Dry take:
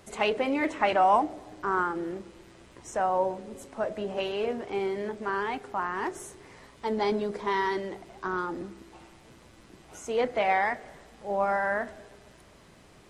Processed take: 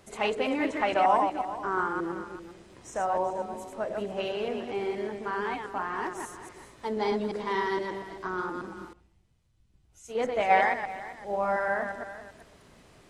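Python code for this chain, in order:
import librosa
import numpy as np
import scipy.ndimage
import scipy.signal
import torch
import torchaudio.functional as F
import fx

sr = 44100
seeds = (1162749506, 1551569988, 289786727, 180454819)

y = fx.reverse_delay(x, sr, ms=118, wet_db=-4.0)
y = y + 10.0 ** (-13.5 / 20.0) * np.pad(y, (int(390 * sr / 1000.0), 0))[:len(y)]
y = fx.band_widen(y, sr, depth_pct=100, at=(8.93, 10.83))
y = y * 10.0 ** (-2.5 / 20.0)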